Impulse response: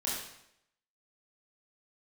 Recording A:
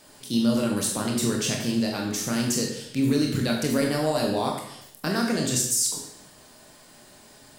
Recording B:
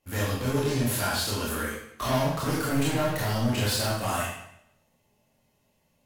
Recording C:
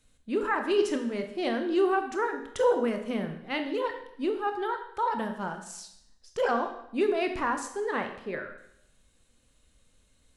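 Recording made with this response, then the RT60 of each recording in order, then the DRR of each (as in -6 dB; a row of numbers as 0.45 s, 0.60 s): B; 0.75 s, 0.75 s, 0.75 s; -0.5 dB, -6.5 dB, 5.5 dB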